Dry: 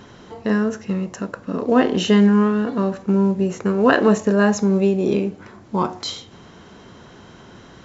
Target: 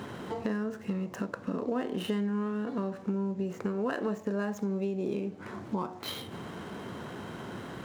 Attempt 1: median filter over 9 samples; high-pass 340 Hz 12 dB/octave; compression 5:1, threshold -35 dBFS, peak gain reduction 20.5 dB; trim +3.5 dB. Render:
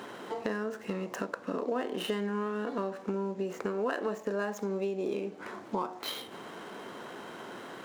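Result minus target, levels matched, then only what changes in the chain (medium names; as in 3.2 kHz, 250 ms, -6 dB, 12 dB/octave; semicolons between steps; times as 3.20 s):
125 Hz band -5.0 dB
change: high-pass 95 Hz 12 dB/octave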